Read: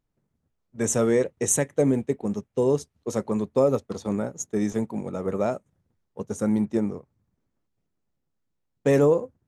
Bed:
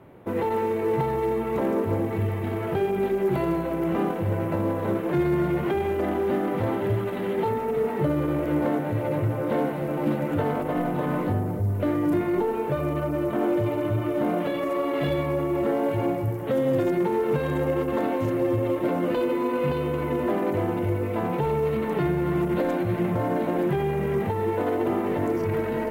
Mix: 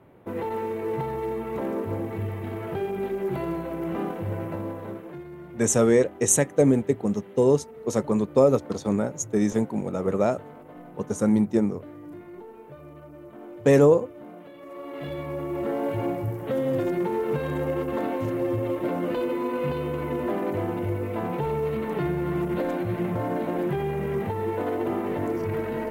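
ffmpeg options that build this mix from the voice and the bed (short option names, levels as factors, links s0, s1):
-filter_complex "[0:a]adelay=4800,volume=1.33[s0];[1:a]volume=3.76,afade=t=out:st=4.38:d=0.86:silence=0.199526,afade=t=in:st=14.57:d=1.33:silence=0.158489[s1];[s0][s1]amix=inputs=2:normalize=0"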